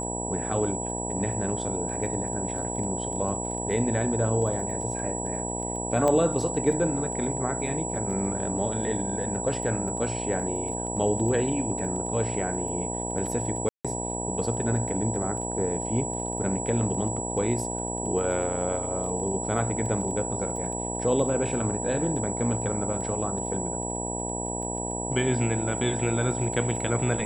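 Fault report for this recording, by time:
mains buzz 60 Hz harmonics 16 −33 dBFS
surface crackle 13 per second −35 dBFS
whistle 7,800 Hz −33 dBFS
0:06.08: click −13 dBFS
0:13.69–0:13.85: drop-out 156 ms
0:20.56: drop-out 2.5 ms

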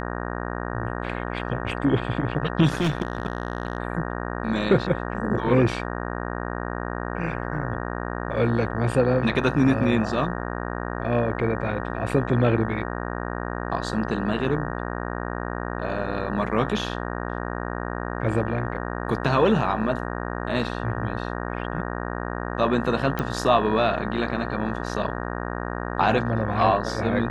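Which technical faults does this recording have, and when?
mains buzz 60 Hz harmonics 31 −30 dBFS
0:02.68–0:03.78: clipping −18 dBFS
0:23.19: click −14 dBFS

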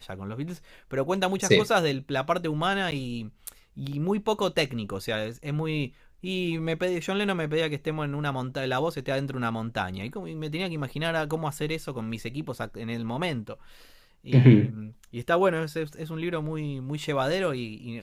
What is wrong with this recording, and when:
0:02.91–0:02.92: drop-out 9.9 ms

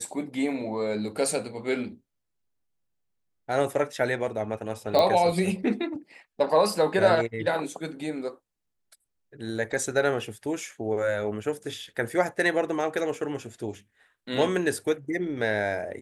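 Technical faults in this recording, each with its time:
0:04.99: click −11 dBFS

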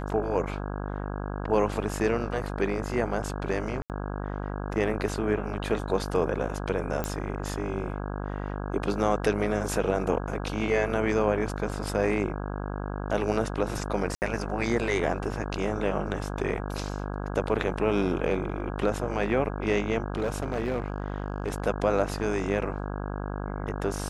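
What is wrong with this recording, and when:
mains buzz 50 Hz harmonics 33 −33 dBFS
0:03.82–0:03.90: drop-out 78 ms
0:07.04: click −15 dBFS
0:14.15–0:14.22: drop-out 69 ms
0:20.16–0:21.60: clipping −23 dBFS

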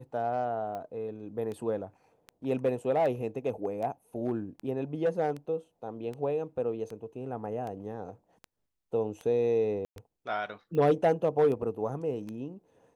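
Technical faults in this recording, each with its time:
scratch tick 78 rpm −27 dBFS
0:09.85–0:09.96: drop-out 112 ms

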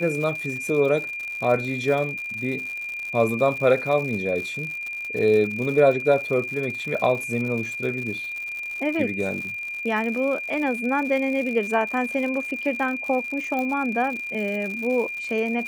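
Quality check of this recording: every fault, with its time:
surface crackle 120 per second −30 dBFS
whistle 2,400 Hz −29 dBFS
0:13.59: click −16 dBFS

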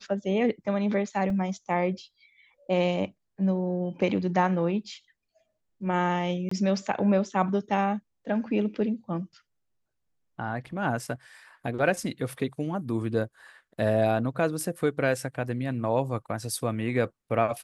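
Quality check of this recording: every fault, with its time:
0:01.30: drop-out 2.2 ms
0:06.49–0:06.51: drop-out 24 ms

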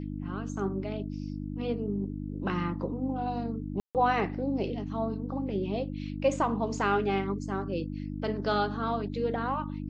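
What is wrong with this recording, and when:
mains hum 50 Hz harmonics 6 −36 dBFS
0:03.80–0:03.95: drop-out 148 ms

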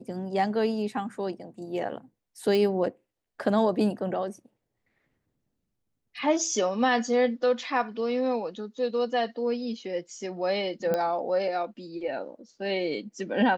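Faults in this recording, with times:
0:02.55: click
0:10.94: click −15 dBFS

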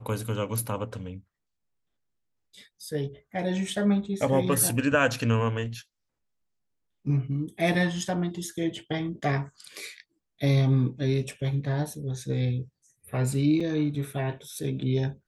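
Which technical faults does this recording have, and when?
0:13.60–0:13.61: drop-out 5.2 ms

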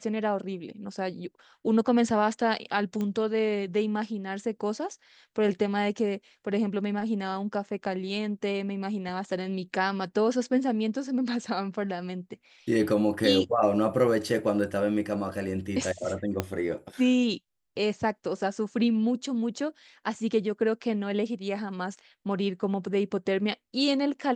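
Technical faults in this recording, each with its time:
0:03.01: click −20 dBFS
0:16.40: click −12 dBFS

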